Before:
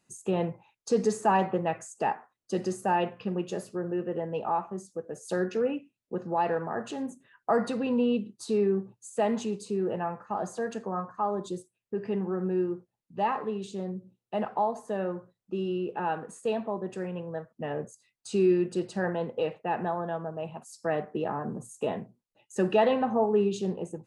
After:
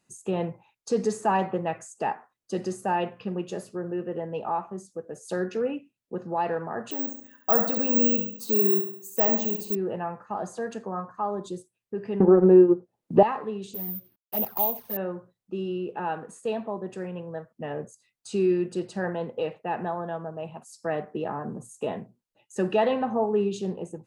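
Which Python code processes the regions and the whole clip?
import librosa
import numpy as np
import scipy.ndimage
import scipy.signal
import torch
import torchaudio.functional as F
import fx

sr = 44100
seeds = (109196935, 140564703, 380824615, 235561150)

y = fx.chain(x, sr, fx.room_flutter(wall_m=11.9, rt60_s=0.62),
    fx.resample_bad(factor=2, down='none', up='zero_stuff'), at=(6.91, 9.75))
y = fx.chain(y, sr, fx.peak_eq(hz=440.0, db=14.5, octaves=3.0),
    fx.transient(attack_db=3, sustain_db=-8),
    fx.band_squash(depth_pct=70), at=(12.2, 13.23))
y = fx.chain(y, sr, fx.cvsd(bps=32000),
    fx.env_flanger(rest_ms=5.5, full_db=-25.5),
    fx.resample_bad(factor=3, down='filtered', up='zero_stuff'), at=(13.74, 14.97))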